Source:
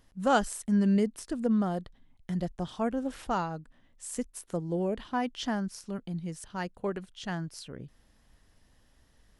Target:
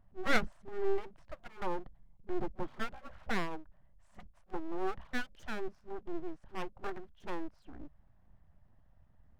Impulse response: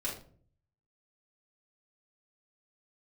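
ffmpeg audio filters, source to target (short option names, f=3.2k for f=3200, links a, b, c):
-af "adynamicsmooth=sensitivity=0.5:basefreq=910,afftfilt=real='re*(1-between(b*sr/4096,200,550))':imag='im*(1-between(b*sr/4096,200,550))':win_size=4096:overlap=0.75,aeval=exprs='abs(val(0))':c=same,volume=2dB"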